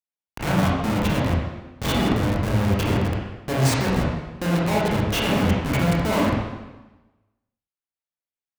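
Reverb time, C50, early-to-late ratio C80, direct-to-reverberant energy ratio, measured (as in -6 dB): 1.1 s, -0.5 dB, 2.5 dB, -5.0 dB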